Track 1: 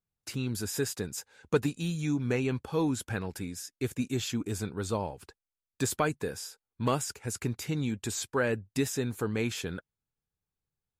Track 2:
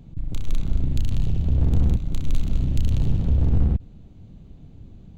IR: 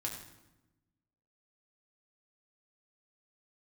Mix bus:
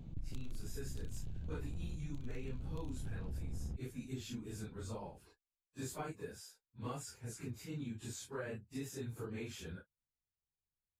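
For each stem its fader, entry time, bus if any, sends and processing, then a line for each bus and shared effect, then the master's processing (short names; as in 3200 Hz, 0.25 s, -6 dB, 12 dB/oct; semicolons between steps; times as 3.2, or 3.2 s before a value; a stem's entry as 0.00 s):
-13.0 dB, 0.00 s, no send, phase scrambler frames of 0.1 s; low shelf 110 Hz +8 dB
-4.5 dB, 0.00 s, no send, limiter -16 dBFS, peak gain reduction 7 dB; auto duck -11 dB, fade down 0.75 s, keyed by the first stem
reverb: off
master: compressor 3:1, threshold -39 dBFS, peak gain reduction 8.5 dB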